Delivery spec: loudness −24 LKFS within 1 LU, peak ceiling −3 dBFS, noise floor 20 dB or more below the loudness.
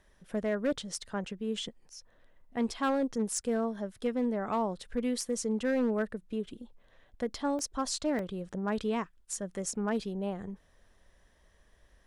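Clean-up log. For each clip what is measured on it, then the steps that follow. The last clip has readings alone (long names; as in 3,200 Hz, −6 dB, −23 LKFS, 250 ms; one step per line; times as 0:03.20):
share of clipped samples 0.8%; peaks flattened at −23.0 dBFS; number of dropouts 2; longest dropout 1.3 ms; integrated loudness −33.5 LKFS; sample peak −23.0 dBFS; target loudness −24.0 LKFS
→ clipped peaks rebuilt −23 dBFS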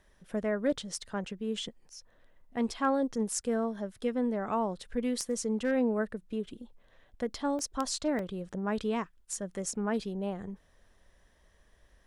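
share of clipped samples 0.0%; number of dropouts 2; longest dropout 1.3 ms
→ repair the gap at 0:07.59/0:08.19, 1.3 ms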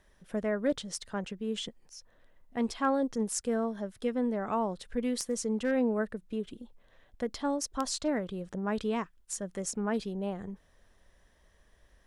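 number of dropouts 0; integrated loudness −33.0 LKFS; sample peak −14.5 dBFS; target loudness −24.0 LKFS
→ level +9 dB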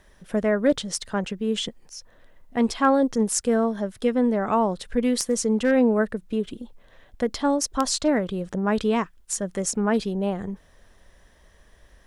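integrated loudness −24.0 LKFS; sample peak −5.5 dBFS; background noise floor −56 dBFS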